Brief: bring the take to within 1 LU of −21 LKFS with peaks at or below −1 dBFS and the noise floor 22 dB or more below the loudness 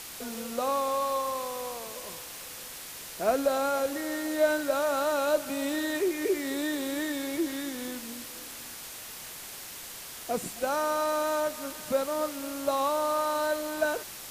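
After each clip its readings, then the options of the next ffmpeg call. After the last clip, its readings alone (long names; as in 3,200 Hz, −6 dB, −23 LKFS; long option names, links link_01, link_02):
background noise floor −43 dBFS; target noise floor −53 dBFS; integrated loudness −30.5 LKFS; sample peak −13.0 dBFS; target loudness −21.0 LKFS
→ -af "afftdn=noise_reduction=10:noise_floor=-43"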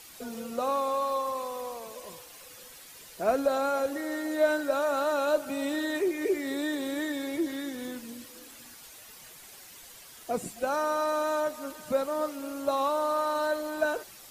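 background noise floor −50 dBFS; target noise floor −52 dBFS
→ -af "afftdn=noise_reduction=6:noise_floor=-50"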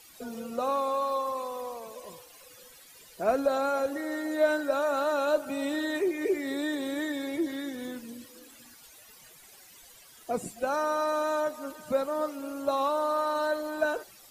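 background noise floor −54 dBFS; integrated loudness −30.0 LKFS; sample peak −13.5 dBFS; target loudness −21.0 LKFS
→ -af "volume=9dB"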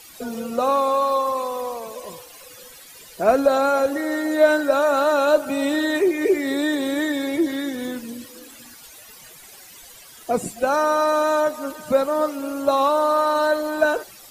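integrated loudness −21.0 LKFS; sample peak −4.5 dBFS; background noise floor −45 dBFS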